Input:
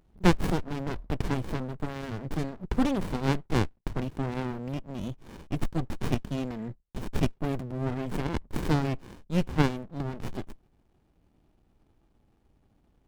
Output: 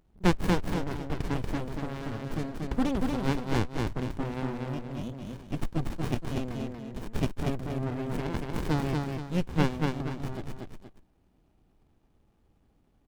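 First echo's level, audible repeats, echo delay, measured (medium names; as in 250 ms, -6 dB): -3.0 dB, 2, 236 ms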